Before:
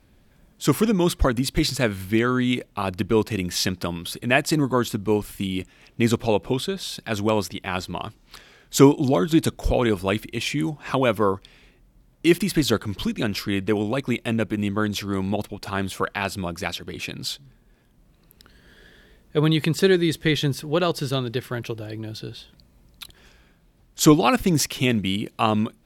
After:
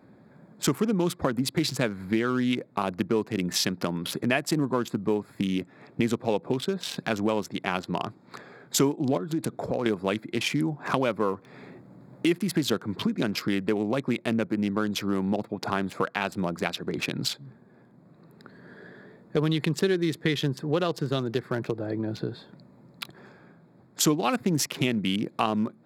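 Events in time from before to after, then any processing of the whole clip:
9.17–9.86 s: compression 3:1, threshold -27 dBFS
11.28–12.28 s: companding laws mixed up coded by mu
whole clip: local Wiener filter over 15 samples; high-pass 130 Hz 24 dB/octave; compression 3:1, threshold -34 dBFS; trim +8 dB

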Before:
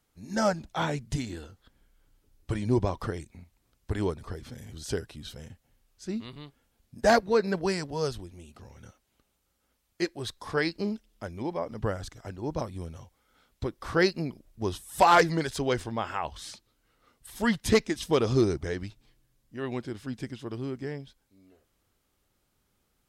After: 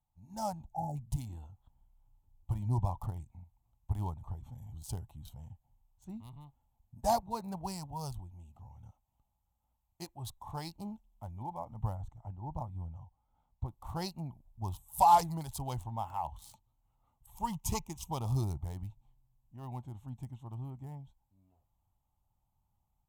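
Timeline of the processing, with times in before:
0.67–0.96 s: spectral selection erased 880–5500 Hz
11.95–13.68 s: treble shelf 2.6 kHz -10 dB
17.35–18.10 s: rippled EQ curve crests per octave 0.75, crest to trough 9 dB
whole clip: local Wiener filter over 9 samples; level rider gain up to 5 dB; FFT filter 120 Hz 0 dB, 450 Hz -23 dB, 870 Hz +3 dB, 1.6 kHz -27 dB, 2.8 kHz -14 dB, 6.1 kHz -5 dB, 13 kHz +9 dB; trim -6 dB

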